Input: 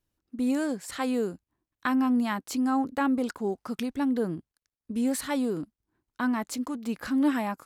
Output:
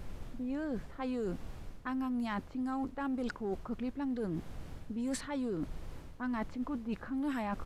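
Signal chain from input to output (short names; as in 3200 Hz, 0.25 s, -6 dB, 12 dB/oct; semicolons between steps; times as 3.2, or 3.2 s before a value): opening faded in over 0.88 s; in parallel at -7 dB: hard clip -25.5 dBFS, distortion -11 dB; on the sum: low-pass opened by the level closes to 350 Hz, open at -19 dBFS; added noise brown -41 dBFS; downsampling 32000 Hz; reverse; compressor 6:1, threshold -34 dBFS, peak gain reduction 14.5 dB; reverse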